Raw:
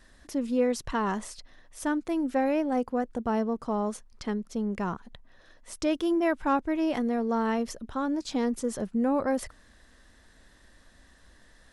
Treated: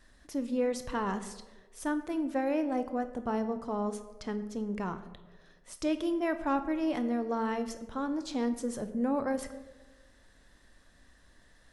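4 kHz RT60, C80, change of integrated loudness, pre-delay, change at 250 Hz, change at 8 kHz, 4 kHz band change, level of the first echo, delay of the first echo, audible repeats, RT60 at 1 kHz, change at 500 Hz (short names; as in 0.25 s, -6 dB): 0.70 s, 14.0 dB, -4.0 dB, 7 ms, -4.0 dB, -4.0 dB, -4.0 dB, none, none, none, 1.1 s, -4.0 dB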